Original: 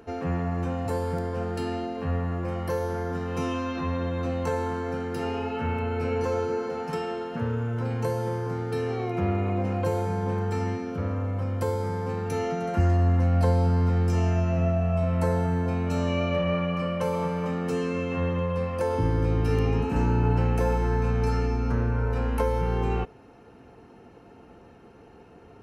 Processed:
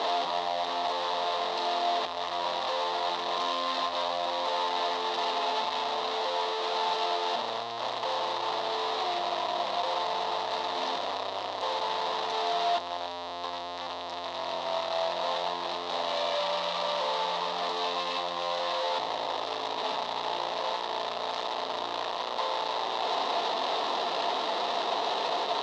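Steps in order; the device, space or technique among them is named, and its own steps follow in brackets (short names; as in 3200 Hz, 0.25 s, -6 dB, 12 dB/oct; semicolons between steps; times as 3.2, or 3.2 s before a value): home computer beeper (infinite clipping; speaker cabinet 660–4700 Hz, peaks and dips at 670 Hz +8 dB, 980 Hz +7 dB, 1500 Hz -10 dB, 2300 Hz -8 dB, 3800 Hz +9 dB); gain -1.5 dB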